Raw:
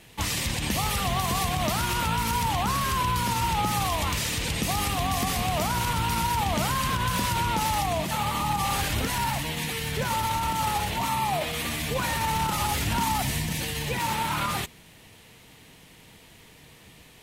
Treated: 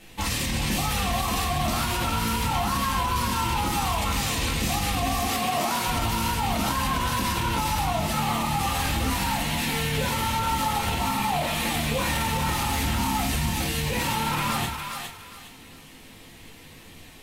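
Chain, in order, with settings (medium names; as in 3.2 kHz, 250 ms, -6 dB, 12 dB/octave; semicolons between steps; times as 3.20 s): 5.20–5.87 s: high-pass 210 Hz 12 dB/octave; simulated room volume 200 m³, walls furnished, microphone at 2.1 m; peak limiter -16 dBFS, peak gain reduction 7.5 dB; thinning echo 411 ms, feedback 30%, high-pass 810 Hz, level -4.5 dB; trim -1 dB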